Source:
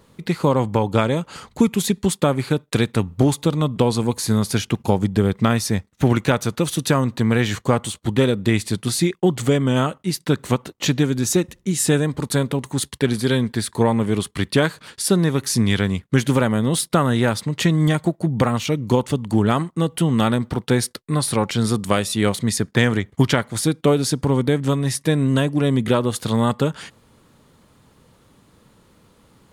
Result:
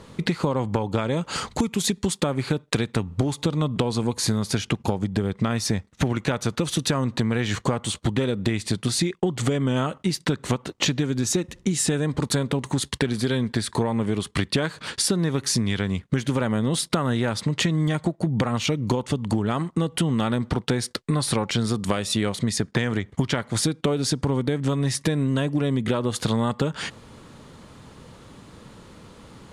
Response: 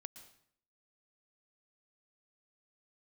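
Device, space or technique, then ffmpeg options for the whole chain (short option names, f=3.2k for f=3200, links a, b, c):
serial compression, leveller first: -filter_complex "[0:a]lowpass=8.3k,acompressor=threshold=-26dB:ratio=1.5,acompressor=threshold=-29dB:ratio=5,asettb=1/sr,asplit=3[a][b][c];[a]atrim=end=1.224[d];[b]atrim=start=1.22:end=2.24,asetpts=PTS-STARTPTS,afade=t=in:d=0.004:c=qsin,afade=t=out:st=1.016:d=0.004:c=qsin,bass=f=250:g=-1,treble=f=4k:g=4[e];[c]atrim=start=2.236[f];[d][e]acrossfade=d=0.004:c1=hsin:c2=qsin[g];[g][f]acrossfade=d=0.004:c1=qsin:c2=hsin,volume=8.5dB"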